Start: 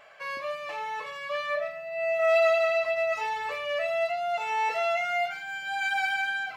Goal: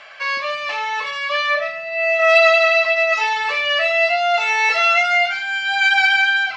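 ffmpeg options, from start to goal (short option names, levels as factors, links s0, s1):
-filter_complex "[0:a]lowpass=f=5600:w=0.5412,lowpass=f=5600:w=1.3066,highshelf=f=2800:g=8.5,acrossover=split=420|890[s0][s1][s2];[s2]acontrast=83[s3];[s0][s1][s3]amix=inputs=3:normalize=0,asettb=1/sr,asplit=3[s4][s5][s6];[s4]atrim=end=3.554[s7];[s5]atrim=start=3.55:end=5.15,asetpts=PTS-STARTPTS,afade=t=in:d=0.004:c=qsin,afade=t=out:st=1.596:d=0.004:c=qsin,asplit=2[s8][s9];[s9]adelay=20,volume=0.531[s10];[s8][s10]amix=inputs=2:normalize=0,atrim=end_sample=70560[s11];[s6]atrim=start=5.146[s12];[s7][s11]acrossfade=d=0.004:c1=hsin:c2=qsin[s13];[s13][s12]acrossfade=d=0.004:c1=qsin:c2=hsin,volume=1.68"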